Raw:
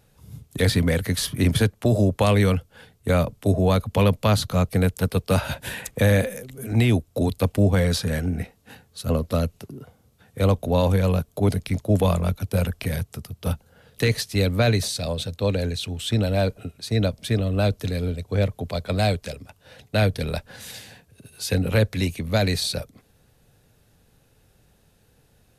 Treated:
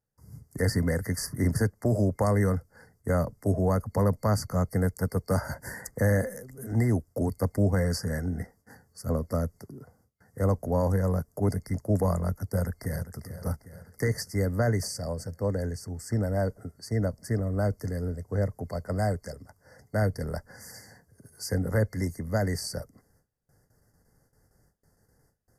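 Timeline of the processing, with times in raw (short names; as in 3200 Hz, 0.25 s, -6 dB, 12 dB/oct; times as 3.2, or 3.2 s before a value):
12.45–13.16 echo throw 0.4 s, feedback 60%, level -12.5 dB
whole clip: gate with hold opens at -49 dBFS; FFT band-reject 2100–4500 Hz; gain -5.5 dB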